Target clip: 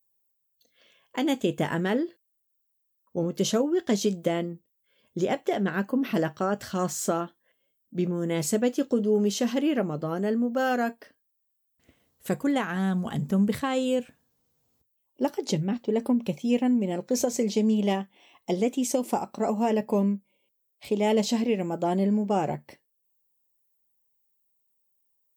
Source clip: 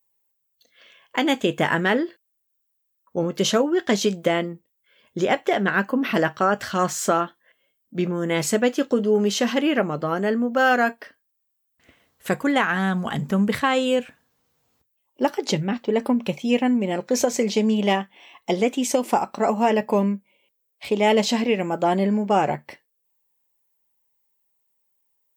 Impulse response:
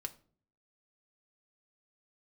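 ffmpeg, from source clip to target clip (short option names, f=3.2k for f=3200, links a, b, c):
-af "equalizer=f=1.7k:t=o:w=2.8:g=-10,volume=-1.5dB"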